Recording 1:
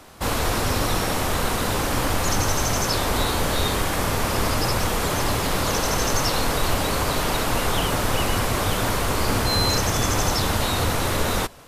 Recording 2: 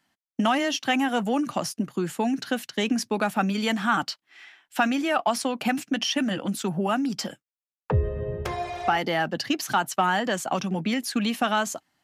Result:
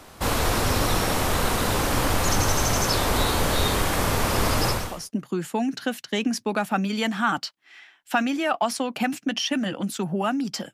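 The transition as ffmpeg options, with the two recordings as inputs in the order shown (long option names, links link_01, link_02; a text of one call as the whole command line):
ffmpeg -i cue0.wav -i cue1.wav -filter_complex "[0:a]apad=whole_dur=10.73,atrim=end=10.73,atrim=end=5.12,asetpts=PTS-STARTPTS[link_01];[1:a]atrim=start=1.33:end=7.38,asetpts=PTS-STARTPTS[link_02];[link_01][link_02]acrossfade=duration=0.44:curve1=qua:curve2=qua" out.wav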